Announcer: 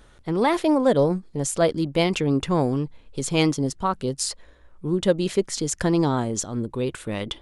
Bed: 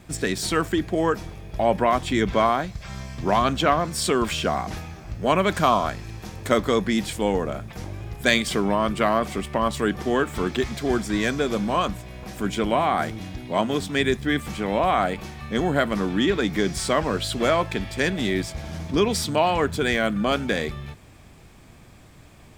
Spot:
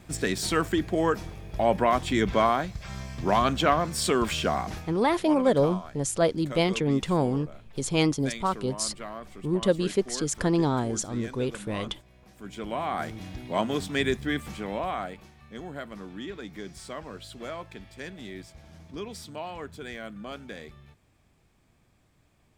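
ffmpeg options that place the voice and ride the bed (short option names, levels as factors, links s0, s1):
-filter_complex "[0:a]adelay=4600,volume=0.708[s0];[1:a]volume=3.76,afade=t=out:st=4.64:d=0.48:silence=0.16788,afade=t=in:st=12.38:d=1:silence=0.199526,afade=t=out:st=14.07:d=1.24:silence=0.237137[s1];[s0][s1]amix=inputs=2:normalize=0"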